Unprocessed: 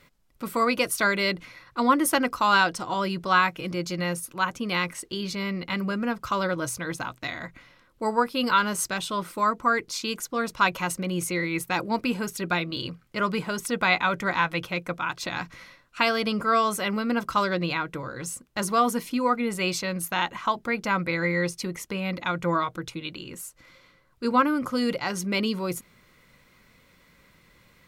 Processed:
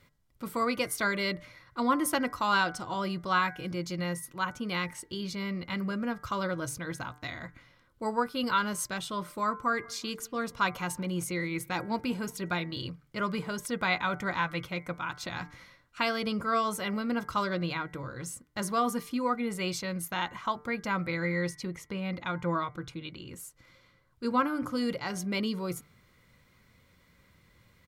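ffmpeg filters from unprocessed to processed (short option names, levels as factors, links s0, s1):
-filter_complex "[0:a]asplit=3[s0][s1][s2];[s0]afade=t=out:st=9.67:d=0.02[s3];[s1]asplit=2[s4][s5];[s5]adelay=184,lowpass=f=2000:p=1,volume=0.0631,asplit=2[s6][s7];[s7]adelay=184,lowpass=f=2000:p=1,volume=0.49,asplit=2[s8][s9];[s9]adelay=184,lowpass=f=2000:p=1,volume=0.49[s10];[s4][s6][s8][s10]amix=inputs=4:normalize=0,afade=t=in:st=9.67:d=0.02,afade=t=out:st=12.67:d=0.02[s11];[s2]afade=t=in:st=12.67:d=0.02[s12];[s3][s11][s12]amix=inputs=3:normalize=0,asettb=1/sr,asplit=3[s13][s14][s15];[s13]atrim=end=21.554[s16];[s14]atrim=start=21.55:end=23.28,asetpts=PTS-STARTPTS,afade=t=in:d=0.004:c=qsin,afade=t=out:st=1.726:d=0.004:c=qsin,highshelf=f=7500:g=-9[s17];[s15]atrim=start=23.276[s18];[s16][s17]acrossfade=d=0.004:c1=hsin:c2=qsin[s19];[s19][s18]acrossfade=d=0.004:c1=qsin:c2=hsin,equalizer=f=91:w=1.1:g=9,bandreject=f=2600:w=18,bandreject=f=148.8:t=h:w=4,bandreject=f=297.6:t=h:w=4,bandreject=f=446.4:t=h:w=4,bandreject=f=595.2:t=h:w=4,bandreject=f=744:t=h:w=4,bandreject=f=892.8:t=h:w=4,bandreject=f=1041.6:t=h:w=4,bandreject=f=1190.4:t=h:w=4,bandreject=f=1339.2:t=h:w=4,bandreject=f=1488:t=h:w=4,bandreject=f=1636.8:t=h:w=4,bandreject=f=1785.6:t=h:w=4,bandreject=f=1934.4:t=h:w=4,bandreject=f=2083.2:t=h:w=4,bandreject=f=2232:t=h:w=4,volume=0.501"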